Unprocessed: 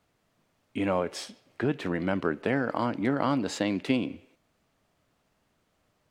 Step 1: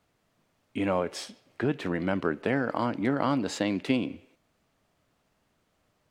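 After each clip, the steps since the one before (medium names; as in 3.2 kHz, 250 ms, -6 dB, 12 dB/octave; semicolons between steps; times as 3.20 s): no audible change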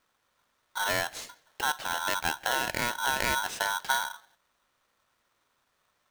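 polarity switched at an audio rate 1.2 kHz; trim -2 dB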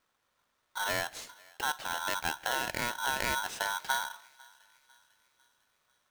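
thinning echo 499 ms, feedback 53%, high-pass 990 Hz, level -23 dB; trim -3.5 dB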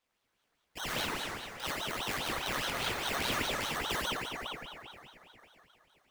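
plate-style reverb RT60 3.3 s, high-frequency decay 0.5×, DRR -6 dB; ring modulator with a swept carrier 1.3 kHz, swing 85%, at 4.9 Hz; trim -5 dB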